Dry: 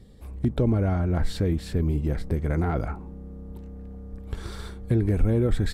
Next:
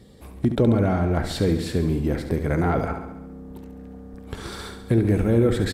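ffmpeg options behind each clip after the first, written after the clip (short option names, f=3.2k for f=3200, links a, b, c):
-filter_complex "[0:a]highpass=f=180:p=1,asplit=2[a][b];[b]aecho=0:1:69|138|207|276|345|414|483:0.355|0.213|0.128|0.0766|0.046|0.0276|0.0166[c];[a][c]amix=inputs=2:normalize=0,volume=6dB"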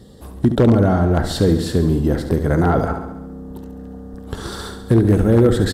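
-af "equalizer=f=2.3k:t=o:w=0.3:g=-15,aeval=exprs='0.266*(abs(mod(val(0)/0.266+3,4)-2)-1)':c=same,volume=6dB"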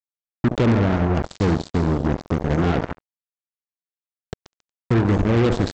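-af "equalizer=f=1.5k:w=0.48:g=-7,aresample=16000,acrusher=bits=2:mix=0:aa=0.5,aresample=44100,volume=-3.5dB"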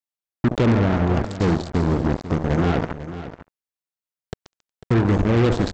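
-af "aecho=1:1:497:0.224"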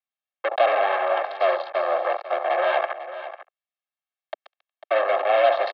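-af "aecho=1:1:2:0.95,highpass=f=290:t=q:w=0.5412,highpass=f=290:t=q:w=1.307,lowpass=f=3.5k:t=q:w=0.5176,lowpass=f=3.5k:t=q:w=0.7071,lowpass=f=3.5k:t=q:w=1.932,afreqshift=200"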